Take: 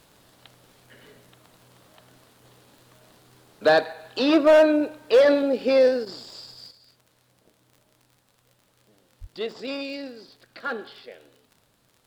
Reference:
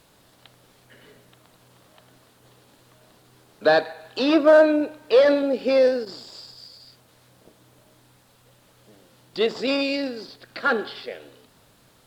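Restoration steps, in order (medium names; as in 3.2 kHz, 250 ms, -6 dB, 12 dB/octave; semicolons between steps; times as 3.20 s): clip repair -10.5 dBFS; de-click; de-plosive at 9.20 s; trim 0 dB, from 6.71 s +8.5 dB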